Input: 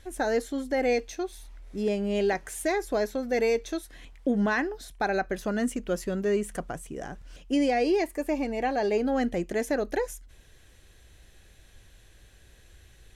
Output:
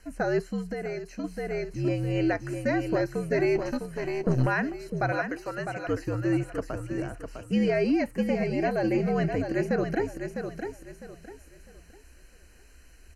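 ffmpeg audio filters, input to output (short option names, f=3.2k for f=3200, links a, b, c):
-filter_complex "[0:a]asettb=1/sr,asplit=3[a][b][c];[a]atrim=end=5.064[d];[b]atrim=start=5.06:end=5.87,asetpts=PTS-STARTPTS,afade=t=in:d=0.004:c=qsin,afade=t=out:st=0.806:d=0.004:c=qsin,highpass=570[e];[c]atrim=start=5.866[f];[d][e]acrossfade=d=0.004:c1=hsin:c2=qsin[g];[g][f]acrossfade=d=0.004:c1=qsin:c2=hsin,aecho=1:1:654|1308|1962|2616:0.447|0.13|0.0376|0.0109,asettb=1/sr,asplit=3[h][i][j];[h]atrim=end=0.614[k];[i]atrim=start=0.61:end=1.24,asetpts=PTS-STARTPTS,afade=t=in:d=0.004:c=qsin,afade=t=out:st=0.626:d=0.004:c=qsin,acompressor=threshold=-31dB:ratio=6[l];[j]atrim=start=1.236[m];[k][l]acrossfade=d=0.004:c1=hsin:c2=qsin[n];[n][m]acrossfade=d=0.004:c1=qsin:c2=hsin,afreqshift=-75,acrossover=split=4100[o][p];[p]acompressor=threshold=-55dB:ratio=4:attack=1:release=60[q];[o][q]amix=inputs=2:normalize=0,asplit=3[r][s][t];[r]afade=t=out:st=3.55:d=0.02[u];[s]aeval=exprs='0.178*(cos(1*acos(clip(val(0)/0.178,-1,1)))-cos(1*PI/2))+0.0316*(cos(4*acos(clip(val(0)/0.178,-1,1)))-cos(4*PI/2))':c=same,afade=t=in:st=3.55:d=0.02,afade=t=out:st=4.46:d=0.02[v];[t]afade=t=in:st=4.46:d=0.02[w];[u][v][w]amix=inputs=3:normalize=0,asuperstop=centerf=3500:order=12:qfactor=4"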